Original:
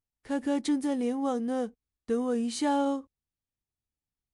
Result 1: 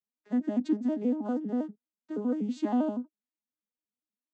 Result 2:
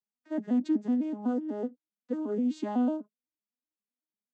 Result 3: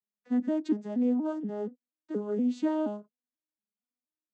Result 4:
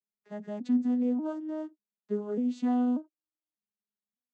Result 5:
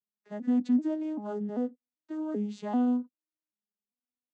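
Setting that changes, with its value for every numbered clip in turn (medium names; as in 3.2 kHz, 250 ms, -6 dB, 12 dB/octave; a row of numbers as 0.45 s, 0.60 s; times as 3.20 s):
vocoder on a broken chord, a note every: 80 ms, 125 ms, 238 ms, 592 ms, 390 ms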